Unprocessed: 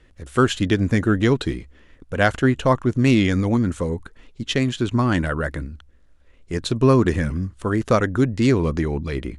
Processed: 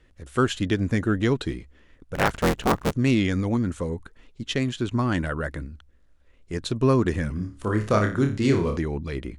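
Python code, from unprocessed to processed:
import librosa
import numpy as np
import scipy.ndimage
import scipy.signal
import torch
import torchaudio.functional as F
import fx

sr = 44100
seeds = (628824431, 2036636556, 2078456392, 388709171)

y = fx.cycle_switch(x, sr, every=3, mode='inverted', at=(2.14, 2.91), fade=0.02)
y = fx.room_flutter(y, sr, wall_m=4.9, rt60_s=0.35, at=(7.35, 8.77))
y = y * librosa.db_to_amplitude(-4.5)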